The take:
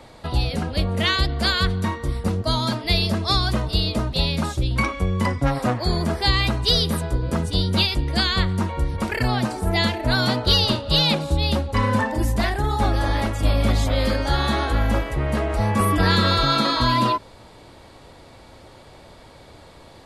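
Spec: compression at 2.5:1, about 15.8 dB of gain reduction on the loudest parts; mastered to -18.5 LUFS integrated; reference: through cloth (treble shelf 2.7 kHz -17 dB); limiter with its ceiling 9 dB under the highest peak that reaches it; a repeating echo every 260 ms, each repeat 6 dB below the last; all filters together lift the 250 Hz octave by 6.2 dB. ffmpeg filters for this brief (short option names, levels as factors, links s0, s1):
-af "equalizer=f=250:t=o:g=8,acompressor=threshold=0.0141:ratio=2.5,alimiter=level_in=1.5:limit=0.0631:level=0:latency=1,volume=0.668,highshelf=f=2700:g=-17,aecho=1:1:260|520|780|1040|1300|1560:0.501|0.251|0.125|0.0626|0.0313|0.0157,volume=8.41"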